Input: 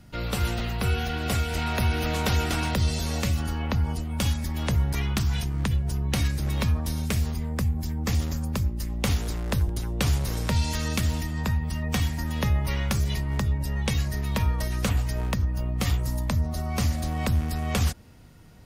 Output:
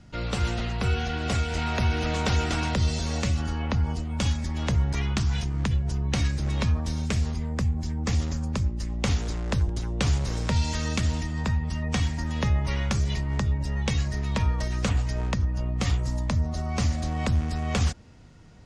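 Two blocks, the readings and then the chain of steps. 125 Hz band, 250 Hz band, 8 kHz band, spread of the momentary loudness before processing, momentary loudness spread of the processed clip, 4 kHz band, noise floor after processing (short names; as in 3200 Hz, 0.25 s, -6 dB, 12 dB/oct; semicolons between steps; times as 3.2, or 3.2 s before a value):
0.0 dB, 0.0 dB, -2.0 dB, 3 LU, 3 LU, -1.0 dB, -32 dBFS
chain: Chebyshev low-pass 7200 Hz, order 3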